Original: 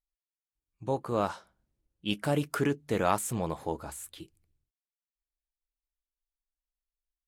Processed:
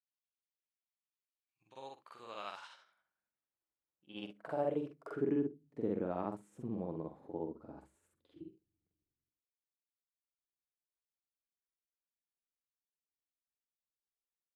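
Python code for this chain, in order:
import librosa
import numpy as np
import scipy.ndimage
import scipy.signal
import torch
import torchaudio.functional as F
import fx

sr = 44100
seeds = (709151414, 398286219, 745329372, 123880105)

y = fx.stretch_grains(x, sr, factor=2.0, grain_ms=177.0)
y = fx.filter_sweep_bandpass(y, sr, from_hz=2900.0, to_hz=290.0, start_s=2.61, end_s=5.45, q=1.4)
y = F.gain(torch.from_numpy(y), -2.5).numpy()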